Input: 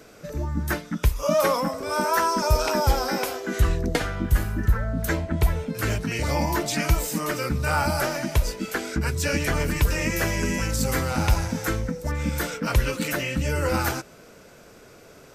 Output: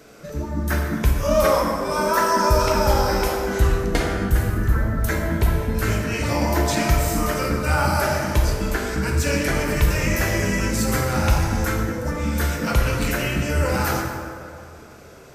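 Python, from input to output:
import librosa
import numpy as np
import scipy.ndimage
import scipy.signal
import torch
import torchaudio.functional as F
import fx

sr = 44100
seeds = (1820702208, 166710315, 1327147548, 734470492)

y = fx.rev_plate(x, sr, seeds[0], rt60_s=2.3, hf_ratio=0.5, predelay_ms=0, drr_db=-0.5)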